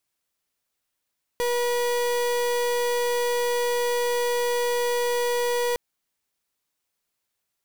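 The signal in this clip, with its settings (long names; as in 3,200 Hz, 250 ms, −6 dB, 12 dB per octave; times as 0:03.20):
pulse wave 483 Hz, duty 36% −24 dBFS 4.36 s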